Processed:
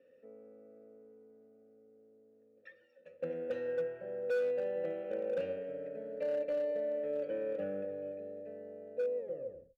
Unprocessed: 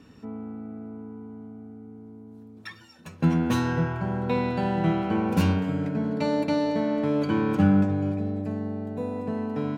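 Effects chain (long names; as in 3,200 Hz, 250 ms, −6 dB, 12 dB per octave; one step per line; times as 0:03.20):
turntable brake at the end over 0.60 s
formant filter e
high-shelf EQ 3,200 Hz −6 dB
floating-point word with a short mantissa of 6 bits
hollow resonant body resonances 530/1,200 Hz, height 15 dB, ringing for 45 ms
gain into a clipping stage and back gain 24 dB
level −5 dB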